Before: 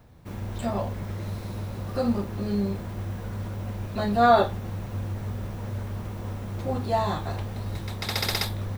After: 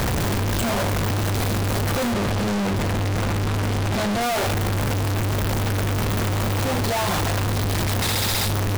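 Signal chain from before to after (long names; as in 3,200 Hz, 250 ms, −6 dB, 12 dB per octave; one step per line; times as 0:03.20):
sign of each sample alone
0:02.13–0:04.21: high-shelf EQ 11,000 Hz −11 dB
level +6 dB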